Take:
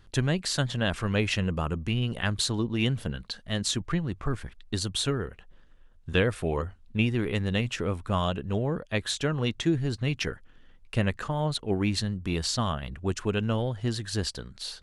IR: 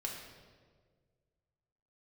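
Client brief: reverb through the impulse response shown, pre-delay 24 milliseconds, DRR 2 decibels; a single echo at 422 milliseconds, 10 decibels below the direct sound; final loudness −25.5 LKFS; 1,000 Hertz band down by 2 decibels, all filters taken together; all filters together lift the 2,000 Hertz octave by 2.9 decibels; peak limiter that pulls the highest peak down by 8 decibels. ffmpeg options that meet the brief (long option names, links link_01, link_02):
-filter_complex "[0:a]equalizer=frequency=1000:width_type=o:gain=-4,equalizer=frequency=2000:width_type=o:gain=5,alimiter=limit=-18.5dB:level=0:latency=1,aecho=1:1:422:0.316,asplit=2[link_01][link_02];[1:a]atrim=start_sample=2205,adelay=24[link_03];[link_02][link_03]afir=irnorm=-1:irlink=0,volume=-2.5dB[link_04];[link_01][link_04]amix=inputs=2:normalize=0,volume=2.5dB"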